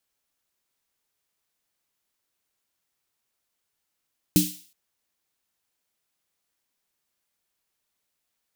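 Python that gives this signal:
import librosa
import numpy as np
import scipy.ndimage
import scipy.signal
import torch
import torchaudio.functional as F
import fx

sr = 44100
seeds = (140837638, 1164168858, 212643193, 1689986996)

y = fx.drum_snare(sr, seeds[0], length_s=0.37, hz=180.0, second_hz=300.0, noise_db=-6, noise_from_hz=2800.0, decay_s=0.28, noise_decay_s=0.49)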